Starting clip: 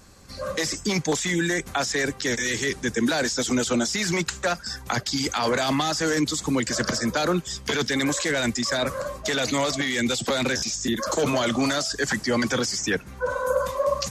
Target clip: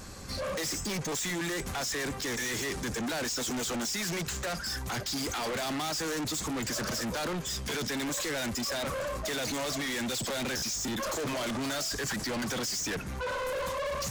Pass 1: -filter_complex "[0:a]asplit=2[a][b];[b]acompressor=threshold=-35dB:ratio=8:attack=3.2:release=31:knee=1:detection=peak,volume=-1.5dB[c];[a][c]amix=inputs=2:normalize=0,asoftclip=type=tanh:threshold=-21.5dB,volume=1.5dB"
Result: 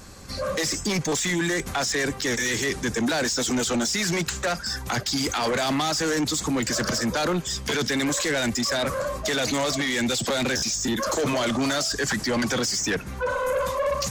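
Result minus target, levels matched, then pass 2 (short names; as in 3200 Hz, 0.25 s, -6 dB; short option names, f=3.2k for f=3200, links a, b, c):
soft clip: distortion -7 dB
-filter_complex "[0:a]asplit=2[a][b];[b]acompressor=threshold=-35dB:ratio=8:attack=3.2:release=31:knee=1:detection=peak,volume=-1.5dB[c];[a][c]amix=inputs=2:normalize=0,asoftclip=type=tanh:threshold=-33dB,volume=1.5dB"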